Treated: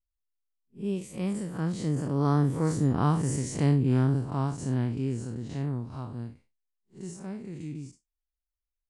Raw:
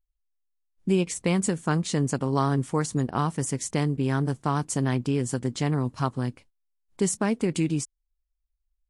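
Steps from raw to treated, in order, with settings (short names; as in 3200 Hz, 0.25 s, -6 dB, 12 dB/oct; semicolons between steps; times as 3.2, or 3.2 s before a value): time blur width 0.116 s; Doppler pass-by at 3.21, 19 m/s, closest 15 m; low shelf 420 Hz +6.5 dB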